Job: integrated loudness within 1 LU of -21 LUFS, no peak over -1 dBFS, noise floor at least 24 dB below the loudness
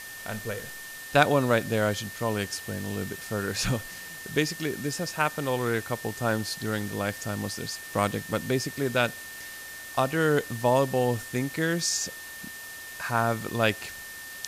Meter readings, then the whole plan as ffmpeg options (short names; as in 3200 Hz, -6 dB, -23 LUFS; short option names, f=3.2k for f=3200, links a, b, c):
steady tone 1800 Hz; tone level -41 dBFS; noise floor -41 dBFS; noise floor target -52 dBFS; loudness -28.0 LUFS; peak -7.0 dBFS; loudness target -21.0 LUFS
-> -af "bandreject=f=1.8k:w=30"
-af "afftdn=nr=11:nf=-41"
-af "volume=7dB,alimiter=limit=-1dB:level=0:latency=1"